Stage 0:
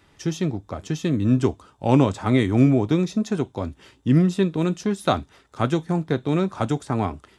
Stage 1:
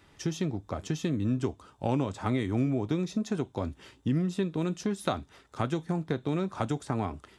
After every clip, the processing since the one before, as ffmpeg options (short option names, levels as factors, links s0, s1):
-af "acompressor=threshold=0.0562:ratio=3,volume=0.794"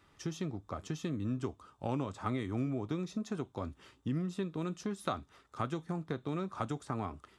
-af "equalizer=f=1200:w=4.6:g=7.5,volume=0.447"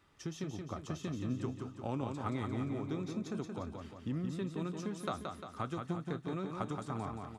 -af "aecho=1:1:175|350|525|700|875|1050|1225:0.562|0.298|0.158|0.0837|0.0444|0.0235|0.0125,volume=0.708"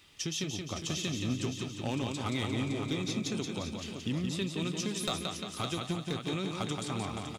-af "highshelf=f=2000:t=q:w=1.5:g=11,aecho=1:1:562:0.376,volume=22.4,asoftclip=hard,volume=0.0447,volume=1.5"